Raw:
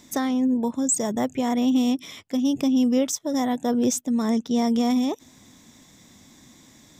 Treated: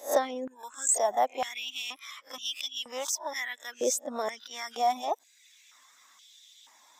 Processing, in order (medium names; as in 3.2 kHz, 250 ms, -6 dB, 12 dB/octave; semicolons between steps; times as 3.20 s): reverse spectral sustain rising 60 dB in 0.30 s; reverb removal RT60 0.89 s; step-sequenced high-pass 2.1 Hz 570–3200 Hz; trim -4.5 dB